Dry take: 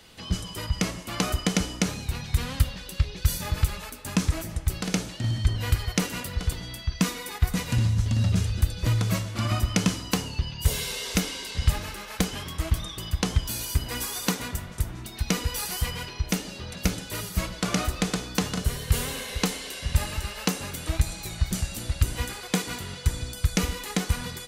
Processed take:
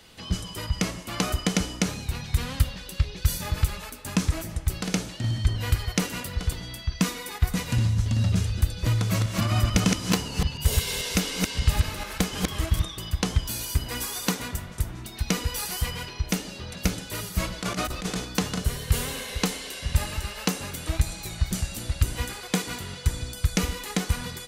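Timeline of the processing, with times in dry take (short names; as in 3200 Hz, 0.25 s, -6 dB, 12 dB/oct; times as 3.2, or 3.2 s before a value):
8.97–12.85 reverse delay 0.146 s, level -2 dB
17.4–18.25 negative-ratio compressor -27 dBFS, ratio -0.5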